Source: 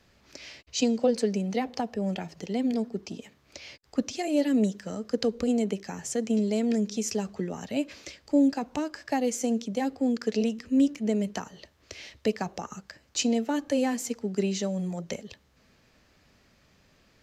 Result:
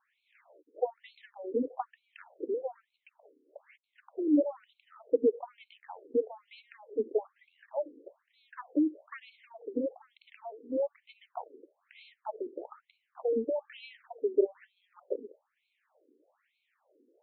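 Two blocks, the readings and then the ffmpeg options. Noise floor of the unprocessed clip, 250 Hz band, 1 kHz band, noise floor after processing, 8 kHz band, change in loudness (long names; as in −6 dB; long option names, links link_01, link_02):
−64 dBFS, −10.0 dB, −7.5 dB, −81 dBFS, below −40 dB, −5.0 dB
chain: -af "aeval=exprs='0.299*(cos(1*acos(clip(val(0)/0.299,-1,1)))-cos(1*PI/2))+0.015*(cos(3*acos(clip(val(0)/0.299,-1,1)))-cos(3*PI/2))+0.0596*(cos(4*acos(clip(val(0)/0.299,-1,1)))-cos(4*PI/2))':channel_layout=same,tiltshelf=frequency=850:gain=9,afftfilt=real='re*between(b*sr/1024,350*pow(3100/350,0.5+0.5*sin(2*PI*1.1*pts/sr))/1.41,350*pow(3100/350,0.5+0.5*sin(2*PI*1.1*pts/sr))*1.41)':imag='im*between(b*sr/1024,350*pow(3100/350,0.5+0.5*sin(2*PI*1.1*pts/sr))/1.41,350*pow(3100/350,0.5+0.5*sin(2*PI*1.1*pts/sr))*1.41)':win_size=1024:overlap=0.75"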